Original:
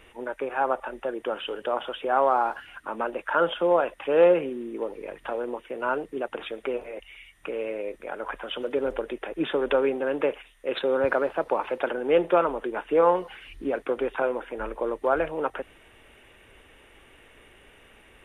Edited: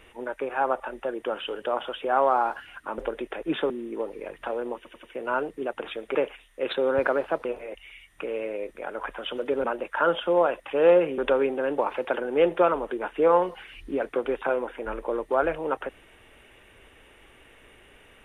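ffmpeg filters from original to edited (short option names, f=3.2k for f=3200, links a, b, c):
-filter_complex "[0:a]asplit=11[a][b][c][d][e][f][g][h][i][j][k];[a]atrim=end=2.982[l];[b]atrim=start=8.888:end=9.612[m];[c]atrim=start=4.518:end=5.672[n];[d]atrim=start=5.578:end=5.672[o];[e]atrim=start=5.578:end=5.672[p];[f]atrim=start=5.578:end=6.702[q];[g]atrim=start=10.208:end=11.512[r];[h]atrim=start=6.698:end=8.892[s];[i]atrim=start=2.978:end=4.522[t];[j]atrim=start=9.608:end=10.212[u];[k]atrim=start=11.508[v];[l][m]acrossfade=d=0.004:c1=hsin:c2=hsin[w];[w][n]acrossfade=d=0.004:c1=hsin:c2=hsin[x];[x][o]acrossfade=d=0.004:c1=hsin:c2=hsin[y];[y][p]acrossfade=d=0.004:c1=hsin:c2=hsin[z];[z][q]acrossfade=d=0.004:c1=hsin:c2=hsin[aa];[aa][r]acrossfade=d=0.004:c1=hsin:c2=hsin[ab];[ab][s]acrossfade=d=0.004:c1=hsin:c2=hsin[ac];[ac][t]acrossfade=d=0.004:c1=hsin:c2=hsin[ad];[ad][u]acrossfade=d=0.004:c1=hsin:c2=hsin[ae];[ae][v]acrossfade=d=0.004:c1=hsin:c2=hsin"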